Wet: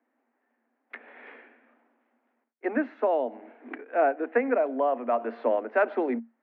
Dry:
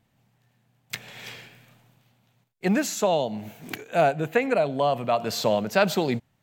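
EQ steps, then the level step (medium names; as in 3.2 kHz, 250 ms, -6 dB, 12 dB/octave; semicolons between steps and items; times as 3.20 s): Chebyshev high-pass 230 Hz, order 10; Chebyshev low-pass 1.9 kHz, order 3; distance through air 240 m; 0.0 dB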